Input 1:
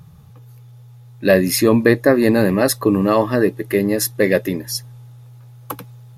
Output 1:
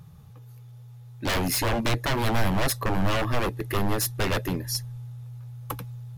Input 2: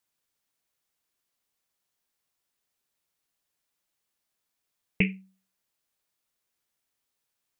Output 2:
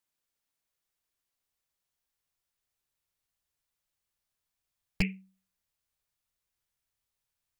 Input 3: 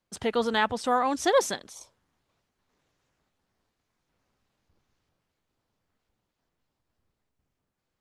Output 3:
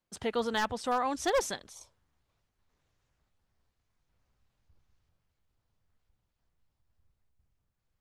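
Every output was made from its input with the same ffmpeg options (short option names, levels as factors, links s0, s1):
-af "aeval=exprs='0.168*(abs(mod(val(0)/0.168+3,4)-2)-1)':c=same,asubboost=boost=4.5:cutoff=120,volume=0.596"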